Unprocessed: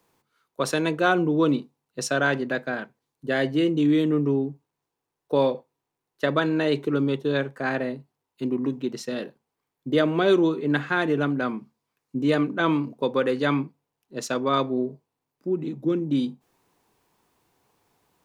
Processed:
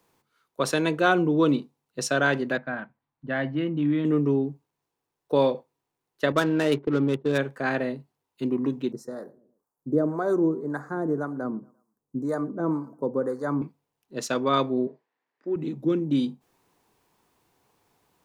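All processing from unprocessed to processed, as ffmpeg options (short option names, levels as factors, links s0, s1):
-filter_complex "[0:a]asettb=1/sr,asplit=3[s0][s1][s2];[s0]atrim=end=2.574[s3];[s1]atrim=start=2.57:end=4.05,asetpts=PTS-STARTPTS,afade=t=in:d=0.004:c=qsin,afade=t=out:st=1.476:d=0.004:c=qsin,lowpass=1900,equalizer=f=420:w=2.6:g=-14.5[s4];[s2]atrim=start=4.046[s5];[s3][s4]acrossfade=d=0.004:c1=hsin:c2=qsin[s6];[s6][s5]acrossfade=d=0.004:c1=qsin:c2=hsin,asettb=1/sr,asplit=3[s7][s8][s9];[s7]atrim=end=6.324[s10];[s8]atrim=start=6.32:end=7.38,asetpts=PTS-STARTPTS,afade=t=in:d=0.004:c=qsin,afade=t=out:st=1.056:d=0.004:c=qsin,agate=range=0.501:threshold=0.0316:ratio=16:release=100:detection=peak,adynamicsmooth=sensitivity=4.5:basefreq=850[s11];[s9]atrim=start=7.376[s12];[s10][s11]acrossfade=d=0.004:c1=hsin:c2=qsin[s13];[s13][s12]acrossfade=d=0.004:c1=qsin:c2=hsin,asettb=1/sr,asplit=3[s14][s15][s16];[s14]atrim=end=8.924[s17];[s15]atrim=start=8.92:end=13.62,asetpts=PTS-STARTPTS,afade=t=in:d=0.004:c=qsin,afade=t=out:st=4.696:d=0.004:c=qsin,asplit=2[s18][s19];[s19]adelay=115,lowpass=f=1900:p=1,volume=0.0794,asplit=2[s20][s21];[s21]adelay=115,lowpass=f=1900:p=1,volume=0.41,asplit=2[s22][s23];[s23]adelay=115,lowpass=f=1900:p=1,volume=0.41[s24];[s18][s20][s22][s24]amix=inputs=4:normalize=0,atrim=end_sample=207270,acrossover=split=580[s25][s26];[s25]aeval=exprs='val(0)*(1-0.7/2+0.7/2*cos(2*PI*1.9*n/s))':c=same[s27];[s26]aeval=exprs='val(0)*(1-0.7/2-0.7/2*cos(2*PI*1.9*n/s))':c=same[s28];[s27][s28]amix=inputs=2:normalize=0,asuperstop=centerf=2900:order=4:qfactor=0.52[s29];[s16]atrim=start=13.616[s30];[s17][s29]acrossfade=d=0.004:c1=hsin:c2=qsin[s31];[s31][s30]acrossfade=d=0.004:c1=qsin:c2=hsin,asettb=1/sr,asplit=3[s32][s33][s34];[s32]atrim=end=14.874[s35];[s33]atrim=start=14.87:end=15.56,asetpts=PTS-STARTPTS,afade=t=in:d=0.004:c=qsin,afade=t=out:st=0.686:d=0.004:c=qsin,highpass=340,lowpass=4100,equalizer=f=1800:t=o:w=0.52:g=12[s36];[s34]atrim=start=15.556[s37];[s35][s36]acrossfade=d=0.004:c1=hsin:c2=qsin[s38];[s38][s37]acrossfade=d=0.004:c1=qsin:c2=hsin"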